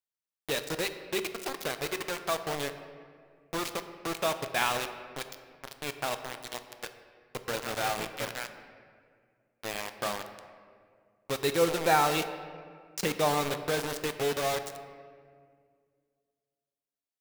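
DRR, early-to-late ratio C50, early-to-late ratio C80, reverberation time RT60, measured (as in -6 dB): 8.5 dB, 10.0 dB, 11.0 dB, 2.0 s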